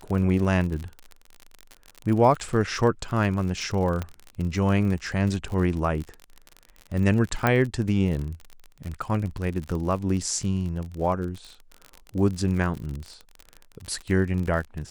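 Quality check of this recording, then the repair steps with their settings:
surface crackle 40 per second −30 dBFS
0:04.02: click −16 dBFS
0:07.47: click −8 dBFS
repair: click removal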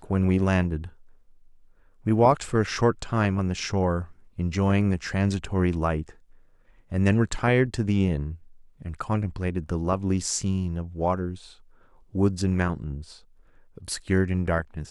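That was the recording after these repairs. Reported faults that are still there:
0:04.02: click

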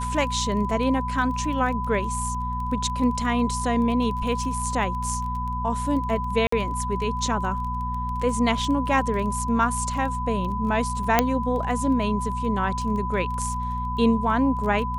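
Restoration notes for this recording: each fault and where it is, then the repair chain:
surface crackle 20 per second −31 dBFS
mains hum 60 Hz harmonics 4 −30 dBFS
whistle 1,000 Hz −28 dBFS
0:06.47–0:06.52: drop-out 54 ms
0:11.19: click −2 dBFS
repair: click removal
hum removal 60 Hz, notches 4
notch filter 1,000 Hz, Q 30
repair the gap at 0:06.47, 54 ms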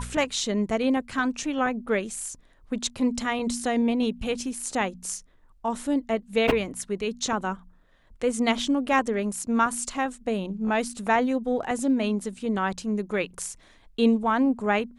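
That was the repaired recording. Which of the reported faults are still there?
none of them is left

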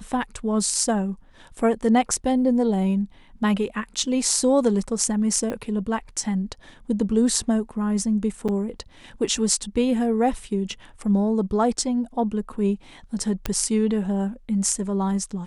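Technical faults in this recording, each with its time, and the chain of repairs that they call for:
0:05.50: click −17 dBFS
0:08.48–0:08.49: drop-out 6.5 ms
0:13.46: click −9 dBFS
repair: click removal
repair the gap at 0:08.48, 6.5 ms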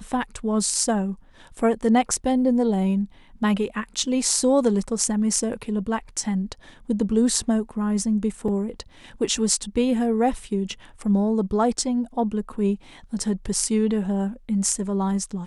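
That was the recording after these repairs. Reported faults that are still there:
0:05.50: click

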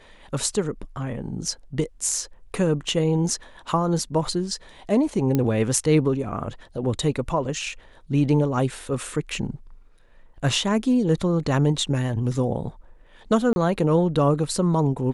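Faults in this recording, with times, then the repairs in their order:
0:05.35: click −10 dBFS
0:13.53–0:13.56: drop-out 31 ms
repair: click removal
repair the gap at 0:13.53, 31 ms

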